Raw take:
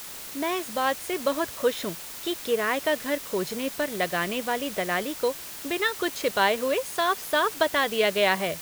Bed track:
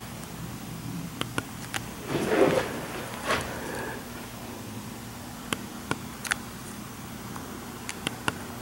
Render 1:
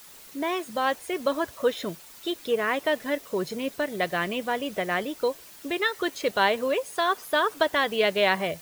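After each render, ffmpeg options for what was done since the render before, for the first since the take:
-af "afftdn=nr=10:nf=-39"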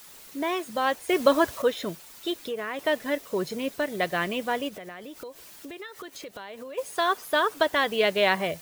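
-filter_complex "[0:a]asettb=1/sr,asplit=3[a][b][c];[a]atrim=end=2.374[d];[b]atrim=start=2.37:end=2.79,asetpts=PTS-STARTPTS,afade=t=in:d=0.004:c=qsin,afade=t=out:st=0.416:d=0.004:c=qsin,acompressor=threshold=-30dB:ratio=3:attack=3.2:release=140:knee=1:detection=peak[e];[c]atrim=start=2.786[f];[d][e]acrossfade=d=0.004:c1=hsin:c2=qsin[g];[g][f]acrossfade=d=0.004:c1=qsin:c2=hsin,asplit=3[h][i][j];[h]afade=t=out:st=4.68:d=0.02[k];[i]acompressor=threshold=-37dB:ratio=8:attack=3.2:release=140:knee=1:detection=peak,afade=t=in:st=4.68:d=0.02,afade=t=out:st=6.77:d=0.02[l];[j]afade=t=in:st=6.77:d=0.02[m];[k][l][m]amix=inputs=3:normalize=0,asplit=3[n][o][p];[n]atrim=end=1.092[q];[o]atrim=start=1.088:end=1.622,asetpts=PTS-STARTPTS,volume=6dB[r];[p]atrim=start=1.618[s];[q][r]acrossfade=d=0.004:c1=hsin:c2=hsin[t];[t][s]acrossfade=d=0.004:c1=hsin:c2=hsin"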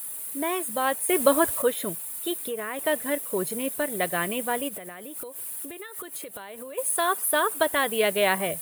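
-af "highshelf=f=7.6k:t=q:w=3:g=11.5"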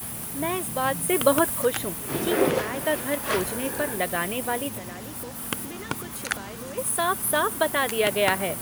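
-filter_complex "[1:a]volume=-0.5dB[a];[0:a][a]amix=inputs=2:normalize=0"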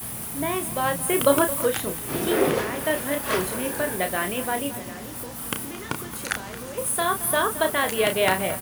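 -filter_complex "[0:a]asplit=2[a][b];[b]adelay=32,volume=-7dB[c];[a][c]amix=inputs=2:normalize=0,asplit=2[d][e];[e]adelay=221.6,volume=-15dB,highshelf=f=4k:g=-4.99[f];[d][f]amix=inputs=2:normalize=0"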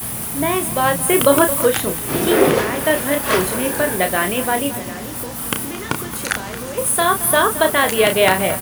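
-af "volume=7.5dB,alimiter=limit=-1dB:level=0:latency=1"

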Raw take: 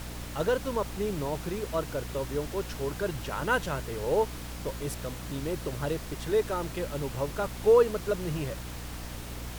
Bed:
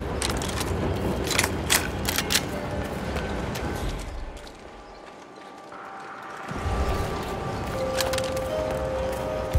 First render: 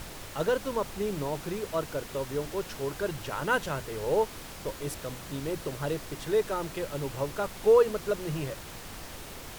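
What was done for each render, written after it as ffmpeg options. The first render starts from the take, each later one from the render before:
-af "bandreject=f=60:t=h:w=6,bandreject=f=120:t=h:w=6,bandreject=f=180:t=h:w=6,bandreject=f=240:t=h:w=6,bandreject=f=300:t=h:w=6"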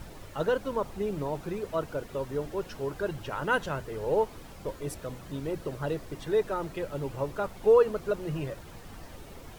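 -af "afftdn=nr=10:nf=-43"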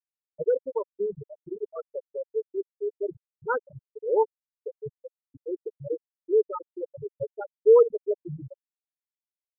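-af "afftfilt=real='re*gte(hypot(re,im),0.2)':imag='im*gte(hypot(re,im),0.2)':win_size=1024:overlap=0.75,aecho=1:1:2.3:0.68"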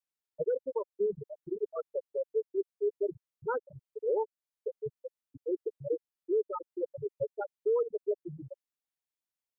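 -filter_complex "[0:a]acrossover=split=230|1300[a][b][c];[a]acompressor=threshold=-47dB:ratio=4[d];[b]acompressor=threshold=-20dB:ratio=4[e];[c]acompressor=threshold=-43dB:ratio=4[f];[d][e][f]amix=inputs=3:normalize=0,alimiter=limit=-22.5dB:level=0:latency=1:release=349"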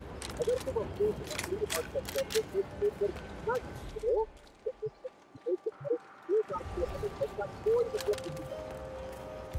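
-filter_complex "[1:a]volume=-14.5dB[a];[0:a][a]amix=inputs=2:normalize=0"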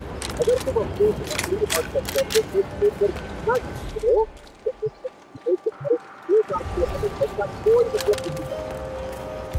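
-af "volume=11dB"

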